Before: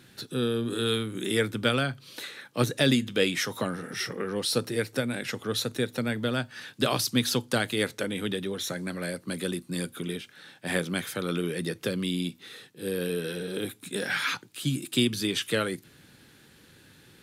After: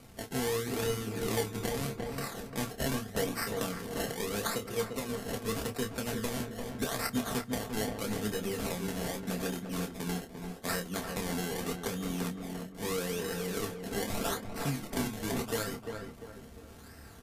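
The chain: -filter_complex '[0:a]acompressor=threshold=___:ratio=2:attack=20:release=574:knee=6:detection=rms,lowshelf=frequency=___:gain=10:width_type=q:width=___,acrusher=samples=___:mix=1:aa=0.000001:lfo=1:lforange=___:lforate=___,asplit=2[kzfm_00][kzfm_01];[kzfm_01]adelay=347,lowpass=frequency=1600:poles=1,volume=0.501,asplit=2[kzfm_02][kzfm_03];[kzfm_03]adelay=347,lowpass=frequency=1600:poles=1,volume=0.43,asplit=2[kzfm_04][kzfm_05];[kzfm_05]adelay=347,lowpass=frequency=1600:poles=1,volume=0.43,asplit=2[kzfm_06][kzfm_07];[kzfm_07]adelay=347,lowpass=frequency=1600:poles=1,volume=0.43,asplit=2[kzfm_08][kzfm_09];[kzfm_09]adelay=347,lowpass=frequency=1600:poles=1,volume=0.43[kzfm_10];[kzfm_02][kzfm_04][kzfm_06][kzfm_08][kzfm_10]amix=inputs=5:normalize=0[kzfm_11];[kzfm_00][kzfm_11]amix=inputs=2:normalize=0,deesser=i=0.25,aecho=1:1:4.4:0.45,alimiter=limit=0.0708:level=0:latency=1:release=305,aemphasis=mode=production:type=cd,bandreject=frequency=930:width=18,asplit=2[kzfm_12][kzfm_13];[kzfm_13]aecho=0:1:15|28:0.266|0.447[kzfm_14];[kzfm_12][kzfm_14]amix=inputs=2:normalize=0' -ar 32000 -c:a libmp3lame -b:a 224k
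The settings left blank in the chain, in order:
0.0178, 120, 1.5, 25, 25, 0.81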